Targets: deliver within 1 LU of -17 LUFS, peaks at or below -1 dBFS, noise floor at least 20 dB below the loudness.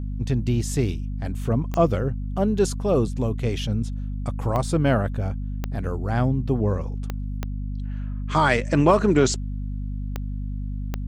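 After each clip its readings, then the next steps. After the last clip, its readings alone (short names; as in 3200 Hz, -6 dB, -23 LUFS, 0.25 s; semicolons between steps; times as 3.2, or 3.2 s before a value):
clicks 7; hum 50 Hz; harmonics up to 250 Hz; hum level -26 dBFS; loudness -24.5 LUFS; peak -4.0 dBFS; loudness target -17.0 LUFS
-> de-click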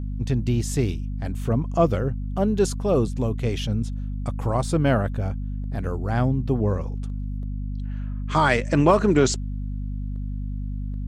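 clicks 0; hum 50 Hz; harmonics up to 250 Hz; hum level -26 dBFS
-> notches 50/100/150/200/250 Hz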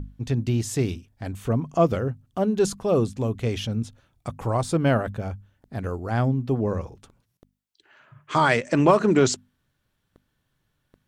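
hum none; loudness -24.0 LUFS; peak -4.0 dBFS; loudness target -17.0 LUFS
-> gain +7 dB; limiter -1 dBFS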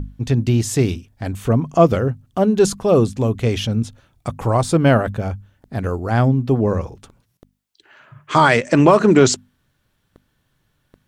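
loudness -17.5 LUFS; peak -1.0 dBFS; noise floor -68 dBFS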